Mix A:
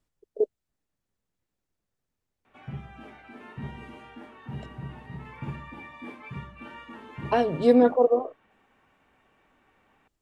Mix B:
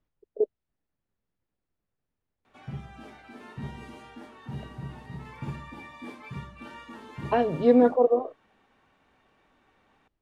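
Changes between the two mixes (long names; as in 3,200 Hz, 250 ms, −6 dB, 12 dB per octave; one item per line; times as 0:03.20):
speech: add high-frequency loss of the air 230 metres
background: add high shelf with overshoot 3,500 Hz +6.5 dB, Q 1.5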